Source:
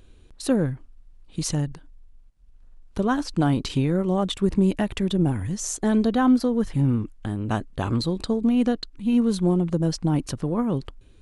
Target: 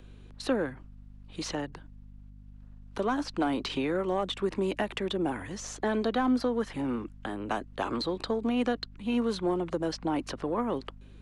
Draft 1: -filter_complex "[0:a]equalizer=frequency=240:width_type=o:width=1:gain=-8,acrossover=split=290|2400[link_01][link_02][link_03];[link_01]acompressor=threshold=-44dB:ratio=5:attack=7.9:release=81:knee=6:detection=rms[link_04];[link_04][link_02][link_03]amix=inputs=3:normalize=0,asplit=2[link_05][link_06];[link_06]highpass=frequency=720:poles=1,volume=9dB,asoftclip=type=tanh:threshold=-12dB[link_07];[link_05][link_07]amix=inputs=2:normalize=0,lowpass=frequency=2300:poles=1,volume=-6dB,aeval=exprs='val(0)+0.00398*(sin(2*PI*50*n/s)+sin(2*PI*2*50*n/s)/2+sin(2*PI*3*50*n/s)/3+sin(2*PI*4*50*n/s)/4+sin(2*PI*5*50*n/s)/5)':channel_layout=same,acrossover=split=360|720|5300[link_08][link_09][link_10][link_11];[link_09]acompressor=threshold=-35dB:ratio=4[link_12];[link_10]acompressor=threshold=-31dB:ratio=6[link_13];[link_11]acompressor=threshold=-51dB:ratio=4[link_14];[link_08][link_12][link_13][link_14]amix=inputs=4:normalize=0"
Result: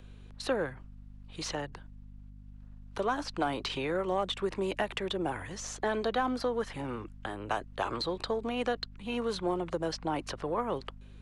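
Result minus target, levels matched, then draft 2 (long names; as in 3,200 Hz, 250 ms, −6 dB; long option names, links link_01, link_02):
250 Hz band −4.0 dB
-filter_complex "[0:a]equalizer=frequency=240:width_type=o:width=1:gain=2.5,acrossover=split=290|2400[link_01][link_02][link_03];[link_01]acompressor=threshold=-44dB:ratio=5:attack=7.9:release=81:knee=6:detection=rms[link_04];[link_04][link_02][link_03]amix=inputs=3:normalize=0,asplit=2[link_05][link_06];[link_06]highpass=frequency=720:poles=1,volume=9dB,asoftclip=type=tanh:threshold=-12dB[link_07];[link_05][link_07]amix=inputs=2:normalize=0,lowpass=frequency=2300:poles=1,volume=-6dB,aeval=exprs='val(0)+0.00398*(sin(2*PI*50*n/s)+sin(2*PI*2*50*n/s)/2+sin(2*PI*3*50*n/s)/3+sin(2*PI*4*50*n/s)/4+sin(2*PI*5*50*n/s)/5)':channel_layout=same,acrossover=split=360|720|5300[link_08][link_09][link_10][link_11];[link_09]acompressor=threshold=-35dB:ratio=4[link_12];[link_10]acompressor=threshold=-31dB:ratio=6[link_13];[link_11]acompressor=threshold=-51dB:ratio=4[link_14];[link_08][link_12][link_13][link_14]amix=inputs=4:normalize=0"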